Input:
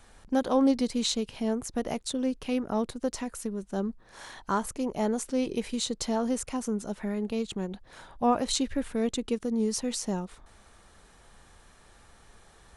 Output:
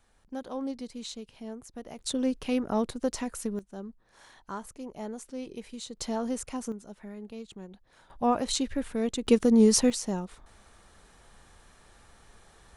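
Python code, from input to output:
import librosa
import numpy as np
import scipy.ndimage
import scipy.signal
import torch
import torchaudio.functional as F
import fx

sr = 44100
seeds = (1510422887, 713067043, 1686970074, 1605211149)

y = fx.gain(x, sr, db=fx.steps((0.0, -11.5), (1.99, 1.0), (3.59, -10.0), (5.97, -3.0), (6.72, -11.0), (8.1, -1.0), (9.27, 8.5), (9.9, -0.5)))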